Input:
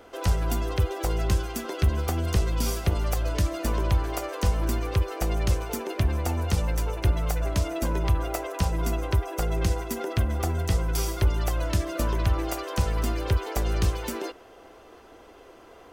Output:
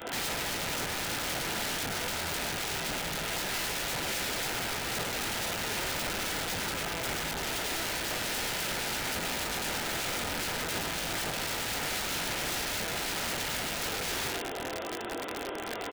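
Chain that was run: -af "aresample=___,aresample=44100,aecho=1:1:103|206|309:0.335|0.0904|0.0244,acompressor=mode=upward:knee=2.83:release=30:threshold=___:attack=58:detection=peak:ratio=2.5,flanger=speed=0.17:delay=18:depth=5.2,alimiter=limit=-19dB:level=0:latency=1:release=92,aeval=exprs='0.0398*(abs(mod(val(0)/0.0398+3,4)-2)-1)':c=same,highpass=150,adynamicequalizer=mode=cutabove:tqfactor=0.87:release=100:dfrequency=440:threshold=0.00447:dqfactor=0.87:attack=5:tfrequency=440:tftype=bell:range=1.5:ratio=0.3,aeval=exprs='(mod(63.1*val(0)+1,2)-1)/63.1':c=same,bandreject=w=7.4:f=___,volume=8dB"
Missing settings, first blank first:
8000, -36dB, 1100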